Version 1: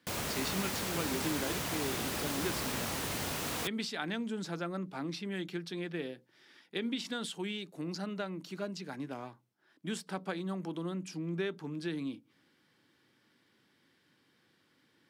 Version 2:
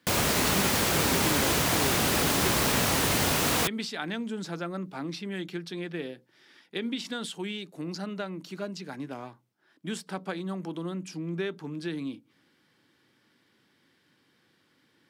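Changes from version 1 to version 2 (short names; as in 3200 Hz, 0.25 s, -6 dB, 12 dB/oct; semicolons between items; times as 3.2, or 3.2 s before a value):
speech +3.0 dB; background +11.0 dB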